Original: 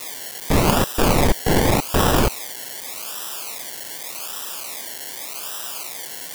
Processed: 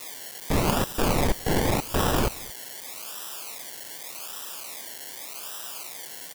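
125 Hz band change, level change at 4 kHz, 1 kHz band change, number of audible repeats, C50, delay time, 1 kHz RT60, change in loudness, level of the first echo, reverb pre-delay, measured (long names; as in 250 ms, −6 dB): −6.5 dB, −6.5 dB, −6.5 dB, 1, no reverb audible, 223 ms, no reverb audible, −6.5 dB, −23.0 dB, no reverb audible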